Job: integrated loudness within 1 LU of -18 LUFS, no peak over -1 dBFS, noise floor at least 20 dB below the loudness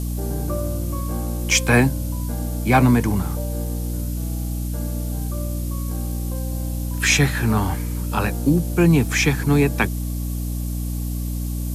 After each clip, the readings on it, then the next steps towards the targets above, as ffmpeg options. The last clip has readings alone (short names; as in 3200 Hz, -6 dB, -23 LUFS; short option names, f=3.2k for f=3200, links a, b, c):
hum 60 Hz; harmonics up to 300 Hz; hum level -23 dBFS; noise floor -26 dBFS; noise floor target -42 dBFS; loudness -22.0 LUFS; peak -3.5 dBFS; loudness target -18.0 LUFS
-> -af "bandreject=f=60:t=h:w=6,bandreject=f=120:t=h:w=6,bandreject=f=180:t=h:w=6,bandreject=f=240:t=h:w=6,bandreject=f=300:t=h:w=6"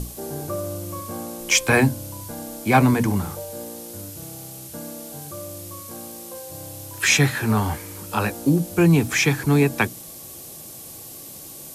hum none; noise floor -39 dBFS; noise floor target -41 dBFS
-> -af "afftdn=nr=6:nf=-39"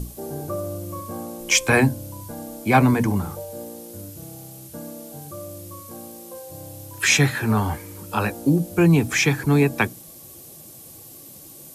noise floor -43 dBFS; loudness -21.0 LUFS; peak -4.5 dBFS; loudness target -18.0 LUFS
-> -af "volume=3dB"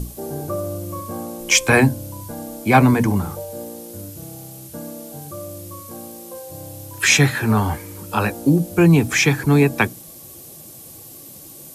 loudness -18.0 LUFS; peak -1.5 dBFS; noise floor -40 dBFS